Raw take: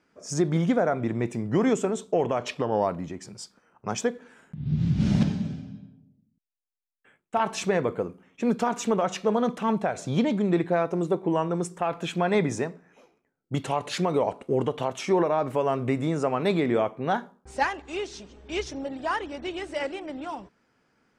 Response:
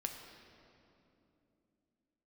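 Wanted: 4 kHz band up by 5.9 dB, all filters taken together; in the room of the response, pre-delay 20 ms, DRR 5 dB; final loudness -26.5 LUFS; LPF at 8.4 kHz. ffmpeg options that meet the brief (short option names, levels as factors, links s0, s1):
-filter_complex "[0:a]lowpass=8400,equalizer=f=4000:t=o:g=8,asplit=2[s0][s1];[1:a]atrim=start_sample=2205,adelay=20[s2];[s1][s2]afir=irnorm=-1:irlink=0,volume=0.596[s3];[s0][s3]amix=inputs=2:normalize=0,volume=0.891"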